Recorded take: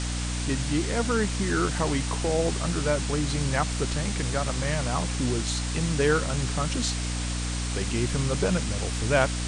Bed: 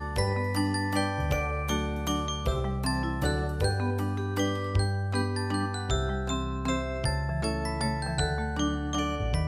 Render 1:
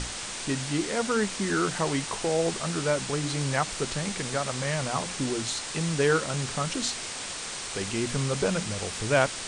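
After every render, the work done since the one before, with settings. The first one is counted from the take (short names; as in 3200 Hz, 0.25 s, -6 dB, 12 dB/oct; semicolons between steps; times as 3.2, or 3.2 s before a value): notches 60/120/180/240/300 Hz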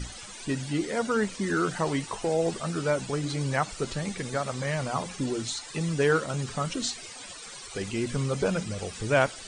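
denoiser 16 dB, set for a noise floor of -36 dBFS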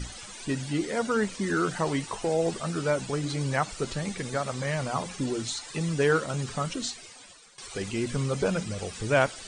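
6.59–7.58 fade out, to -16.5 dB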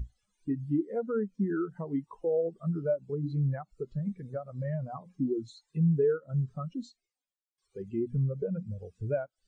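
compressor 6:1, threshold -28 dBFS, peak gain reduction 10.5 dB; spectral expander 2.5:1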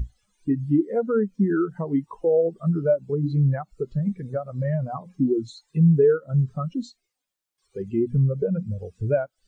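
gain +8.5 dB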